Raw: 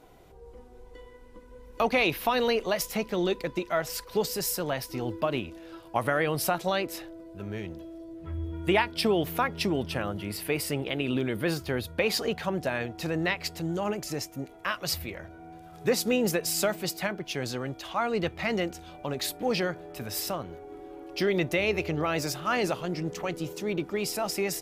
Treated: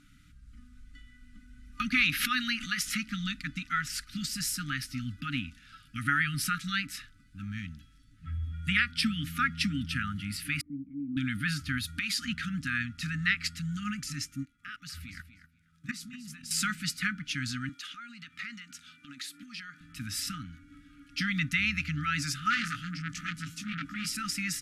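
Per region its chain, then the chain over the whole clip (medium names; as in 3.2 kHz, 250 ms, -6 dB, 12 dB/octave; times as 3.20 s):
2.11–3.08 s: bass shelf 150 Hz -10 dB + swell ahead of each attack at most 75 dB/s
10.61–11.17 s: cascade formant filter u + distance through air 350 m
11.78–12.25 s: treble shelf 2.8 kHz +10.5 dB + compression 3:1, threshold -30 dBFS
14.43–16.51 s: level held to a coarse grid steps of 21 dB + feedback delay 243 ms, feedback 15%, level -12 dB
17.69–19.81 s: high-pass 310 Hz + compression 16:1, threshold -35 dBFS
22.50–24.09 s: band-stop 670 Hz, Q 6.6 + doubling 18 ms -2.5 dB + transformer saturation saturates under 1.9 kHz
whole clip: FFT band-reject 300–1200 Hz; low-pass 11 kHz 24 dB/octave; dynamic bell 1.7 kHz, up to +4 dB, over -46 dBFS, Q 1.6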